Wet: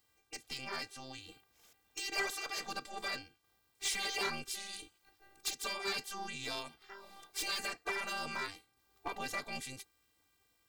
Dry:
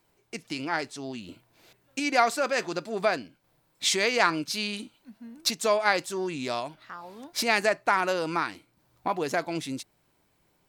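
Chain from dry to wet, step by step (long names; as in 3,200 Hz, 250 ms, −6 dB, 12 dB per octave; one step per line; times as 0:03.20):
phases set to zero 395 Hz
gate on every frequency bin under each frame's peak −10 dB weak
hard clipping −28.5 dBFS, distortion −9 dB
level +1 dB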